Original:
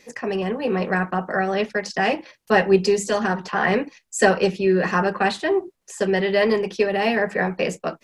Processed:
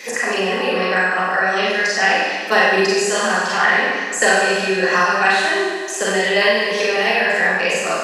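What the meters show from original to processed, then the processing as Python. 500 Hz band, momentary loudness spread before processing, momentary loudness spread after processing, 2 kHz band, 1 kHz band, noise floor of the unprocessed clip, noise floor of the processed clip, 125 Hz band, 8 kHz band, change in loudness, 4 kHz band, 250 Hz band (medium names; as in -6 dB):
+1.5 dB, 7 LU, 4 LU, +10.0 dB, +5.5 dB, -64 dBFS, -25 dBFS, -4.5 dB, +9.5 dB, +5.5 dB, +10.5 dB, -2.5 dB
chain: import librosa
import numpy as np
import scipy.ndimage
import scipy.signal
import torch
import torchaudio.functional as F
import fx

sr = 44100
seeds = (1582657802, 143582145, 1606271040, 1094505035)

p1 = fx.highpass(x, sr, hz=1400.0, slope=6)
p2 = fx.level_steps(p1, sr, step_db=24)
p3 = p1 + (p2 * 10.0 ** (1.0 / 20.0))
p4 = fx.rev_schroeder(p3, sr, rt60_s=1.1, comb_ms=32, drr_db=-8.0)
y = fx.band_squash(p4, sr, depth_pct=70)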